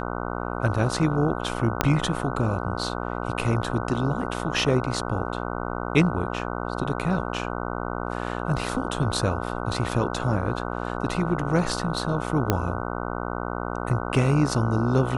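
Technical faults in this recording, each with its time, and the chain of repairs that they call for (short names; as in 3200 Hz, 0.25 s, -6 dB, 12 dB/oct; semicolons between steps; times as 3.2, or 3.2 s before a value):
buzz 60 Hz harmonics 25 -30 dBFS
1.81 pop -4 dBFS
12.5 pop -6 dBFS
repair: de-click; de-hum 60 Hz, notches 25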